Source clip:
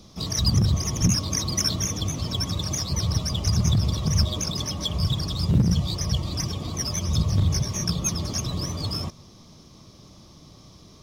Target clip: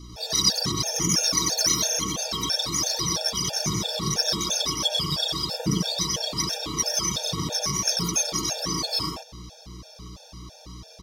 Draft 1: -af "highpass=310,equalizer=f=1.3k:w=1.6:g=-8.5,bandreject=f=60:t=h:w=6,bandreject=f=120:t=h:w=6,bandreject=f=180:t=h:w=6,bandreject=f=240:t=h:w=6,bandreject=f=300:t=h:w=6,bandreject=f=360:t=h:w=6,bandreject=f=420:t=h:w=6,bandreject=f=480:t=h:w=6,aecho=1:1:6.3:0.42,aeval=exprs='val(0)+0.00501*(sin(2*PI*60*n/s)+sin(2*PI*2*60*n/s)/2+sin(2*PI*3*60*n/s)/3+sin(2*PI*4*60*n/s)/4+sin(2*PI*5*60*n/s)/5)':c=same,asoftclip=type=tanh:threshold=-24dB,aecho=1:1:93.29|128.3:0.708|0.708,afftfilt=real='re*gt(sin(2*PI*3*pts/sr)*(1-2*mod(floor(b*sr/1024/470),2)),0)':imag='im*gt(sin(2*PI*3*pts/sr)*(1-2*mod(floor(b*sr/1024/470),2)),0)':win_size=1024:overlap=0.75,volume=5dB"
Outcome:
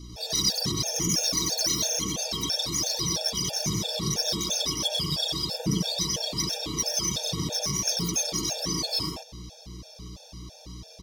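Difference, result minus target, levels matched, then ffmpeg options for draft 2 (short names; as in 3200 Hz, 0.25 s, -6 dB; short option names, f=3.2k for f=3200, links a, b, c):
soft clip: distortion +13 dB; 1000 Hz band -3.5 dB
-af "highpass=310,bandreject=f=60:t=h:w=6,bandreject=f=120:t=h:w=6,bandreject=f=180:t=h:w=6,bandreject=f=240:t=h:w=6,bandreject=f=300:t=h:w=6,bandreject=f=360:t=h:w=6,bandreject=f=420:t=h:w=6,bandreject=f=480:t=h:w=6,aecho=1:1:6.3:0.42,aeval=exprs='val(0)+0.00501*(sin(2*PI*60*n/s)+sin(2*PI*2*60*n/s)/2+sin(2*PI*3*60*n/s)/3+sin(2*PI*4*60*n/s)/4+sin(2*PI*5*60*n/s)/5)':c=same,asoftclip=type=tanh:threshold=-14dB,aecho=1:1:93.29|128.3:0.708|0.708,afftfilt=real='re*gt(sin(2*PI*3*pts/sr)*(1-2*mod(floor(b*sr/1024/470),2)),0)':imag='im*gt(sin(2*PI*3*pts/sr)*(1-2*mod(floor(b*sr/1024/470),2)),0)':win_size=1024:overlap=0.75,volume=5dB"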